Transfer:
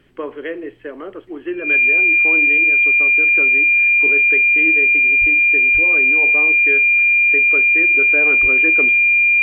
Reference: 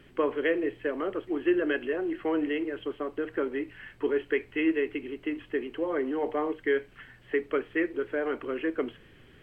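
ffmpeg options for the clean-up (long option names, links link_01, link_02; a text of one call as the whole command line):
ffmpeg -i in.wav -filter_complex "[0:a]bandreject=frequency=2400:width=30,asplit=3[link_01][link_02][link_03];[link_01]afade=type=out:start_time=5.2:duration=0.02[link_04];[link_02]highpass=frequency=140:width=0.5412,highpass=frequency=140:width=1.3066,afade=type=in:start_time=5.2:duration=0.02,afade=type=out:start_time=5.32:duration=0.02[link_05];[link_03]afade=type=in:start_time=5.32:duration=0.02[link_06];[link_04][link_05][link_06]amix=inputs=3:normalize=0,asplit=3[link_07][link_08][link_09];[link_07]afade=type=out:start_time=5.73:duration=0.02[link_10];[link_08]highpass=frequency=140:width=0.5412,highpass=frequency=140:width=1.3066,afade=type=in:start_time=5.73:duration=0.02,afade=type=out:start_time=5.85:duration=0.02[link_11];[link_09]afade=type=in:start_time=5.85:duration=0.02[link_12];[link_10][link_11][link_12]amix=inputs=3:normalize=0,asplit=3[link_13][link_14][link_15];[link_13]afade=type=out:start_time=8.41:duration=0.02[link_16];[link_14]highpass=frequency=140:width=0.5412,highpass=frequency=140:width=1.3066,afade=type=in:start_time=8.41:duration=0.02,afade=type=out:start_time=8.53:duration=0.02[link_17];[link_15]afade=type=in:start_time=8.53:duration=0.02[link_18];[link_16][link_17][link_18]amix=inputs=3:normalize=0,asetnsamples=nb_out_samples=441:pad=0,asendcmd='7.97 volume volume -4.5dB',volume=0dB" out.wav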